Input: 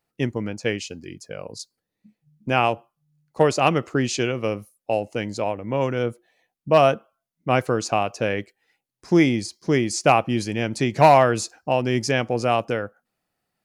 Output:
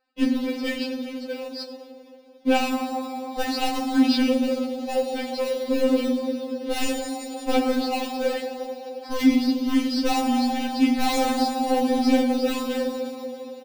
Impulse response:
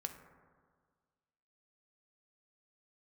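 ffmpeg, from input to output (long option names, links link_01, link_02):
-filter_complex "[1:a]atrim=start_sample=2205,asetrate=26460,aresample=44100[link_01];[0:a][link_01]afir=irnorm=-1:irlink=0,aresample=11025,acrusher=bits=4:mode=log:mix=0:aa=0.000001,aresample=44100,bandreject=frequency=50:width_type=h:width=6,bandreject=frequency=100:width_type=h:width=6,bandreject=frequency=150:width_type=h:width=6,bandreject=frequency=200:width_type=h:width=6,bandreject=frequency=250:width_type=h:width=6,asplit=2[link_02][link_03];[link_03]acrusher=samples=14:mix=1:aa=0.000001,volume=-11dB[link_04];[link_02][link_04]amix=inputs=2:normalize=0,highpass=43,asoftclip=type=tanh:threshold=-15dB,acrossover=split=350|3000[link_05][link_06][link_07];[link_06]acompressor=threshold=-39dB:ratio=2[link_08];[link_05][link_08][link_07]amix=inputs=3:normalize=0,afftfilt=real='re*3.46*eq(mod(b,12),0)':imag='im*3.46*eq(mod(b,12),0)':win_size=2048:overlap=0.75,volume=6.5dB"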